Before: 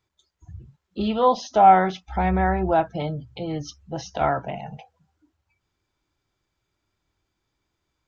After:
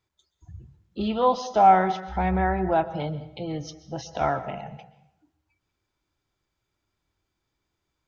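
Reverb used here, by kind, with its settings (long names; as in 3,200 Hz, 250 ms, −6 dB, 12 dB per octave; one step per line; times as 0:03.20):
dense smooth reverb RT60 0.77 s, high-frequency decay 0.85×, pre-delay 110 ms, DRR 14 dB
level −2.5 dB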